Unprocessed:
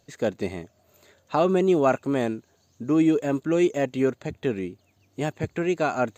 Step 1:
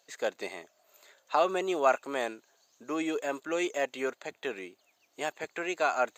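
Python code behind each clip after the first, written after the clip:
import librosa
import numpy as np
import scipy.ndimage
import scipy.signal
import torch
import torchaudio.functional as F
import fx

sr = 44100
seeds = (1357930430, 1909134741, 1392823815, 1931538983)

y = scipy.signal.sosfilt(scipy.signal.butter(2, 680.0, 'highpass', fs=sr, output='sos'), x)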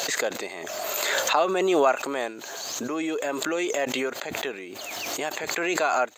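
y = fx.pre_swell(x, sr, db_per_s=21.0)
y = y * librosa.db_to_amplitude(2.5)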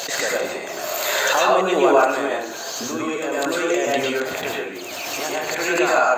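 y = fx.rev_plate(x, sr, seeds[0], rt60_s=0.62, hf_ratio=0.55, predelay_ms=90, drr_db=-4.5)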